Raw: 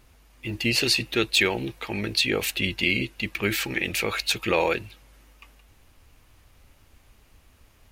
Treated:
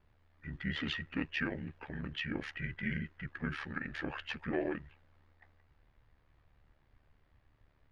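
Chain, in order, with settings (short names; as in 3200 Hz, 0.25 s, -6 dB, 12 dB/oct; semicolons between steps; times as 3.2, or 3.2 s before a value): ring modulator 37 Hz; formant shift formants -6 st; air absorption 290 m; gain -8 dB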